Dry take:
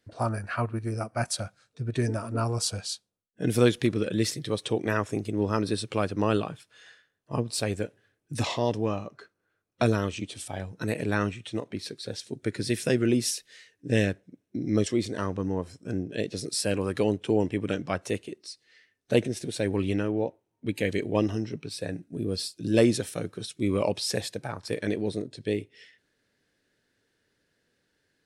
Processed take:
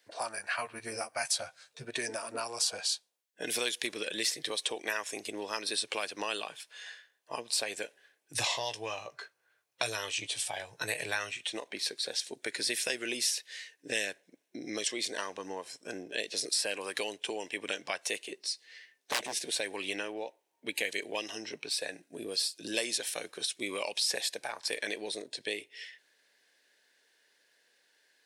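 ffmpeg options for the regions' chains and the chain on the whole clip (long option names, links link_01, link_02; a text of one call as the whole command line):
ffmpeg -i in.wav -filter_complex "[0:a]asettb=1/sr,asplit=3[link_01][link_02][link_03];[link_01]atrim=end=0.584[link_04];[link_02]atrim=start=0.58:end=1.85,asetpts=PTS-STARTPTS,afade=type=in:duration=0.004:curve=qsin,afade=type=out:start_time=1.266:duration=0.004:curve=qsin,lowshelf=frequency=170:width_type=q:width=1.5:gain=8,asplit=2[link_05][link_06];[link_06]adelay=13,volume=-4dB[link_07];[link_05][link_07]amix=inputs=2:normalize=0,atrim=end_sample=56007[link_08];[link_03]atrim=start=1.846[link_09];[link_04][link_08]acrossfade=duration=0.004:curve1=hsin:curve2=qsin[link_10];[link_10][link_09]acrossfade=duration=0.004:curve1=qsin:curve2=hsin,asettb=1/sr,asplit=3[link_11][link_12][link_13];[link_11]atrim=end=8.344[link_14];[link_12]atrim=start=8.34:end=11.37,asetpts=PTS-STARTPTS,afade=type=in:duration=0.004:curve=qsin,afade=type=out:start_time=3.026:duration=0.004:curve=qsin,lowshelf=frequency=170:width_type=q:width=3:gain=8,asplit=2[link_15][link_16];[link_16]adelay=18,volume=-11dB[link_17];[link_15][link_17]amix=inputs=2:normalize=0,atrim=end_sample=133623[link_18];[link_13]atrim=start=11.366[link_19];[link_14][link_18]acrossfade=duration=0.004:curve1=hsin:curve2=qsin[link_20];[link_20][link_19]acrossfade=duration=0.004:curve1=qsin:curve2=hsin,asettb=1/sr,asplit=3[link_21][link_22][link_23];[link_21]atrim=end=18.304[link_24];[link_22]atrim=start=18.3:end=19.39,asetpts=PTS-STARTPTS,afade=type=in:duration=0.004:curve=qsin,afade=type=out:start_time=1.086:duration=0.004:curve=qsin,lowshelf=frequency=320:gain=7,asplit=2[link_25][link_26];[link_26]adelay=15,volume=-12dB[link_27];[link_25][link_27]amix=inputs=2:normalize=0,atrim=end_sample=48069,aeval=exprs='0.1*(abs(mod(val(0)/0.1+3,4)-2)-1)':channel_layout=same[link_28];[link_23]atrim=start=19.386[link_29];[link_24][link_28]acrossfade=duration=0.004:curve1=hsin:curve2=qsin[link_30];[link_30][link_29]acrossfade=duration=0.004:curve1=qsin:curve2=hsin,highpass=760,equalizer=frequency=1300:width=5.1:gain=-9.5,acrossover=split=2000|5600[link_31][link_32][link_33];[link_31]acompressor=threshold=-44dB:ratio=4[link_34];[link_32]acompressor=threshold=-41dB:ratio=4[link_35];[link_33]acompressor=threshold=-42dB:ratio=4[link_36];[link_34][link_35][link_36]amix=inputs=3:normalize=0,volume=7.5dB" out.wav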